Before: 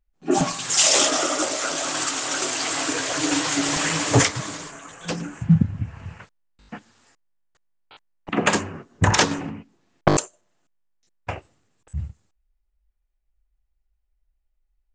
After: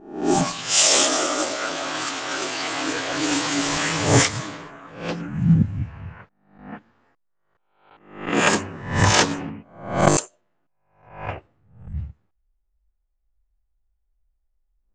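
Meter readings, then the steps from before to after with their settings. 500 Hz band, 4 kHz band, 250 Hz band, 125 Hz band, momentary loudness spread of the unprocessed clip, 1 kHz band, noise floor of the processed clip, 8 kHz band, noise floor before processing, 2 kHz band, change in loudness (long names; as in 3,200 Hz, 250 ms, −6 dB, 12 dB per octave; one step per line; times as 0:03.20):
+1.5 dB, +1.0 dB, +1.0 dB, +1.0 dB, 18 LU, +1.5 dB, −70 dBFS, −0.5 dB, −72 dBFS, +1.5 dB, +0.5 dB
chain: peak hold with a rise ahead of every peak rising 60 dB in 0.58 s
low-pass that shuts in the quiet parts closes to 1,400 Hz, open at −13.5 dBFS
level −1.5 dB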